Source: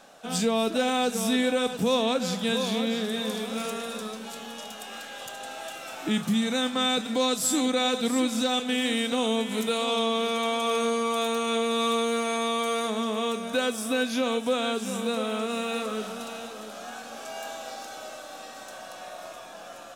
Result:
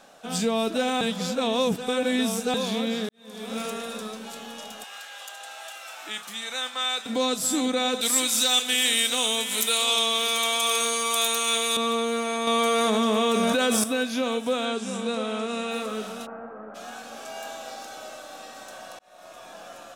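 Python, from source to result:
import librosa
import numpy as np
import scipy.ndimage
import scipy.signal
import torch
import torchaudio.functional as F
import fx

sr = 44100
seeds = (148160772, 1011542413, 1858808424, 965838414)

y = fx.highpass(x, sr, hz=870.0, slope=12, at=(4.84, 7.06))
y = fx.tilt_eq(y, sr, slope=4.5, at=(8.01, 11.77))
y = fx.env_flatten(y, sr, amount_pct=100, at=(12.47, 13.84))
y = fx.lowpass(y, sr, hz=9300.0, slope=24, at=(14.65, 15.71))
y = fx.steep_lowpass(y, sr, hz=1700.0, slope=36, at=(16.25, 16.74), fade=0.02)
y = fx.edit(y, sr, fx.reverse_span(start_s=1.01, length_s=1.53),
    fx.fade_in_span(start_s=3.09, length_s=0.43, curve='qua'),
    fx.fade_in_span(start_s=18.99, length_s=0.51), tone=tone)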